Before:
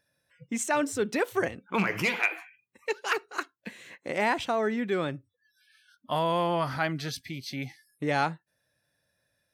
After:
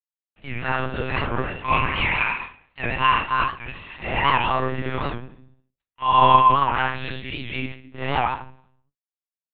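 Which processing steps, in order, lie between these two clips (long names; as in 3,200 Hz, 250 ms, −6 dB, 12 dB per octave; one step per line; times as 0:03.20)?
random phases in long frames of 200 ms
mains-hum notches 60/120/180/240/300 Hz
downward compressor 6 to 1, threshold −31 dBFS, peak gain reduction 10 dB
hollow resonant body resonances 1,000/2,800 Hz, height 18 dB, ringing for 35 ms
dead-zone distortion −48.5 dBFS
convolution reverb RT60 0.60 s, pre-delay 3 ms, DRR 2 dB
one-pitch LPC vocoder at 8 kHz 130 Hz
wow of a warped record 78 rpm, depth 160 cents
level +3.5 dB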